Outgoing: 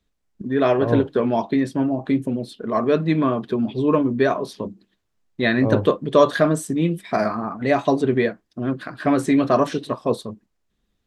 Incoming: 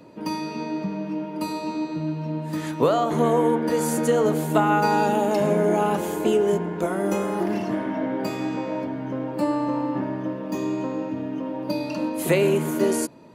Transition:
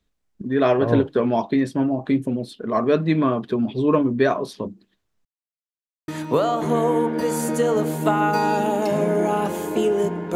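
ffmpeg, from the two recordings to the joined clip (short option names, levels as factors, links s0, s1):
-filter_complex "[0:a]apad=whole_dur=10.35,atrim=end=10.35,asplit=2[s0][s1];[s0]atrim=end=5.25,asetpts=PTS-STARTPTS,afade=t=out:st=5.246:d=0.004:c=hsin[s2];[s1]atrim=start=5.25:end=6.08,asetpts=PTS-STARTPTS,volume=0[s3];[1:a]atrim=start=2.57:end=6.84,asetpts=PTS-STARTPTS,afade=t=in:d=0.004:c=hsin[s4];[s2][s3][s4]concat=n=3:v=0:a=1"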